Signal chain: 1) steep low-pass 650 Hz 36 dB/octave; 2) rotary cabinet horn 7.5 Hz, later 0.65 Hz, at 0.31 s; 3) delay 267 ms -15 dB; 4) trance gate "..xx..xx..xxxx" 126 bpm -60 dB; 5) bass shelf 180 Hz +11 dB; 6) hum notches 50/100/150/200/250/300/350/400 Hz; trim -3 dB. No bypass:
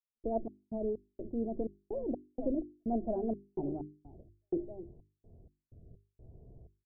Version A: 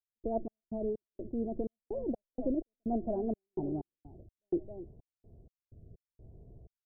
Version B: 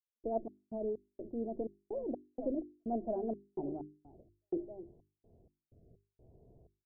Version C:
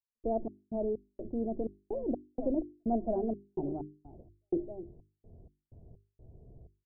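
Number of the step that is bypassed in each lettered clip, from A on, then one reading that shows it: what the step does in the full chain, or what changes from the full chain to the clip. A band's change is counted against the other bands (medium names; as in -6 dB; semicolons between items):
6, momentary loudness spread change +4 LU; 5, 125 Hz band -5.0 dB; 2, momentary loudness spread change -4 LU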